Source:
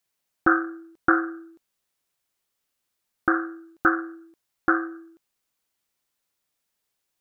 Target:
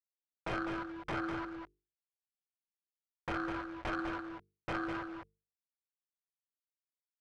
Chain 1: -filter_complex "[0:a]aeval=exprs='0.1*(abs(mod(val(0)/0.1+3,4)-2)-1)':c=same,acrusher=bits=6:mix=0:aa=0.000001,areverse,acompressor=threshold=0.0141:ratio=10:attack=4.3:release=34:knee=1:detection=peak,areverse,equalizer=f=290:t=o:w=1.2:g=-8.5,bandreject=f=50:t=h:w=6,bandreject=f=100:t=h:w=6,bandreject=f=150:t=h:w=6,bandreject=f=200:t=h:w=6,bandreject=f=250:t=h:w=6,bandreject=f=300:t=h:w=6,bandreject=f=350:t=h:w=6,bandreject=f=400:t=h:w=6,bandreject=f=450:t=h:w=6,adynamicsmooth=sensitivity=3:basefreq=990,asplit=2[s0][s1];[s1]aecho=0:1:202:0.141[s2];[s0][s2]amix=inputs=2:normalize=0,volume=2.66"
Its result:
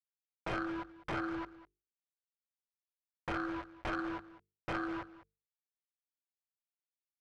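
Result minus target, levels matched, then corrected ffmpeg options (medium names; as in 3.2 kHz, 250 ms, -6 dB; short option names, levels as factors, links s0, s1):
echo-to-direct -11 dB
-filter_complex "[0:a]aeval=exprs='0.1*(abs(mod(val(0)/0.1+3,4)-2)-1)':c=same,acrusher=bits=6:mix=0:aa=0.000001,areverse,acompressor=threshold=0.0141:ratio=10:attack=4.3:release=34:knee=1:detection=peak,areverse,equalizer=f=290:t=o:w=1.2:g=-8.5,bandreject=f=50:t=h:w=6,bandreject=f=100:t=h:w=6,bandreject=f=150:t=h:w=6,bandreject=f=200:t=h:w=6,bandreject=f=250:t=h:w=6,bandreject=f=300:t=h:w=6,bandreject=f=350:t=h:w=6,bandreject=f=400:t=h:w=6,bandreject=f=450:t=h:w=6,adynamicsmooth=sensitivity=3:basefreq=990,asplit=2[s0][s1];[s1]aecho=0:1:202:0.501[s2];[s0][s2]amix=inputs=2:normalize=0,volume=2.66"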